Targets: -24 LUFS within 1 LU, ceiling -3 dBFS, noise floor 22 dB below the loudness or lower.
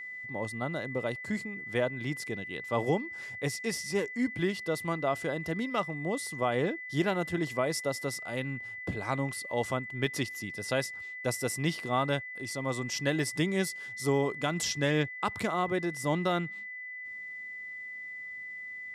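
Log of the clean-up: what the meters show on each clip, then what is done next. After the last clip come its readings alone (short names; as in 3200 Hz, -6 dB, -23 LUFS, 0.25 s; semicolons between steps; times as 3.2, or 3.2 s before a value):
steady tone 2000 Hz; tone level -39 dBFS; loudness -32.5 LUFS; peak -15.5 dBFS; loudness target -24.0 LUFS
-> notch 2000 Hz, Q 30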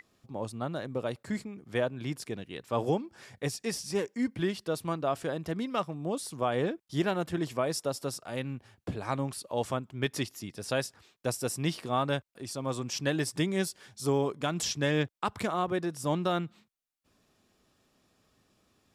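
steady tone none; loudness -32.5 LUFS; peak -16.0 dBFS; loudness target -24.0 LUFS
-> gain +8.5 dB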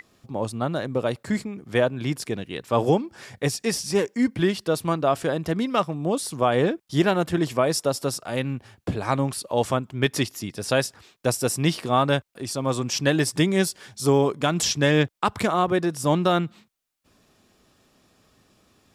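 loudness -24.0 LUFS; peak -7.5 dBFS; noise floor -65 dBFS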